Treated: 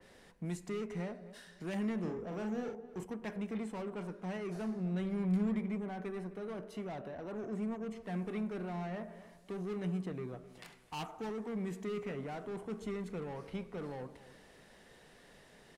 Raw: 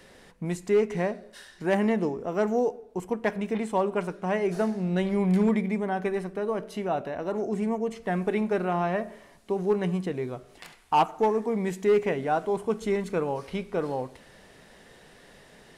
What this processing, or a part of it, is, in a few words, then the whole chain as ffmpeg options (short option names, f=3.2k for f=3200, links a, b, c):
one-band saturation: -filter_complex "[0:a]acrossover=split=240|2300[a][b][c];[b]asoftclip=type=tanh:threshold=-35dB[d];[a][d][c]amix=inputs=3:normalize=0,asettb=1/sr,asplit=3[e][f][g];[e]atrim=end=1.994[h];[f]atrim=start=1.99:end=3.03,asetpts=PTS-STARTPTS,afade=t=in:d=0.004:c=qsin,afade=t=out:st=1.036:d=0.004:c=qsin,asplit=2[i][j];[j]adelay=46,volume=-5dB[k];[i][k]amix=inputs=2:normalize=0,atrim=end_sample=45864[l];[g]atrim=start=3.026[m];[h][l]acrossfade=d=0.004:c1=hsin:c2=qsin[n];[n][m]acrossfade=d=0.004:c1=qsin:c2=hsin,asplit=2[o][p];[p]adelay=258,lowpass=f=1.4k:p=1,volume=-15.5dB,asplit=2[q][r];[r]adelay=258,lowpass=f=1.4k:p=1,volume=0.33,asplit=2[s][t];[t]adelay=258,lowpass=f=1.4k:p=1,volume=0.33[u];[o][q][s][u]amix=inputs=4:normalize=0,adynamicequalizer=threshold=0.00251:dfrequency=2400:dqfactor=0.7:tfrequency=2400:tqfactor=0.7:attack=5:release=100:ratio=0.375:range=3.5:mode=cutabove:tftype=highshelf,volume=-7dB"